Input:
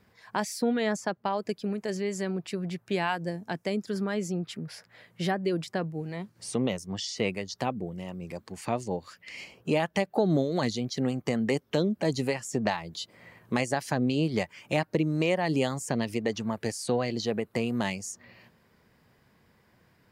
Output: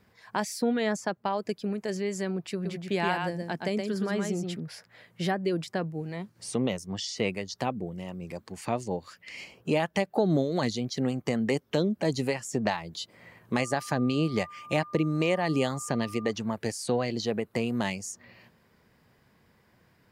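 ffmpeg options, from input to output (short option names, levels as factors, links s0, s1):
-filter_complex "[0:a]asettb=1/sr,asplit=3[s0][s1][s2];[s0]atrim=end=2.534[s3];[s1]atrim=start=2.53:end=4.6,asetpts=PTS-STARTPTS,afade=t=in:d=0.004:c=qsin,afade=t=out:st=2.066:d=0.004:c=qsin,aecho=1:1:121:0.596,atrim=end_sample=91287[s4];[s2]atrim=start=4.596[s5];[s3][s4]acrossfade=d=0.004:c1=hsin:c2=qsin[s6];[s6][s5]acrossfade=d=0.004:c1=qsin:c2=hsin,asettb=1/sr,asplit=3[s7][s8][s9];[s7]atrim=end=13.534[s10];[s8]atrim=start=13.53:end=16.31,asetpts=PTS-STARTPTS,afade=t=in:d=0.004:c=qsin,afade=t=out:st=2.776:d=0.004:c=qsin,aeval=exprs='val(0)+0.00708*sin(2*PI*1200*n/s)':c=same[s11];[s9]atrim=start=16.306[s12];[s10][s11]acrossfade=d=0.004:c1=hsin:c2=qsin[s13];[s13][s12]acrossfade=d=0.004:c1=qsin:c2=hsin"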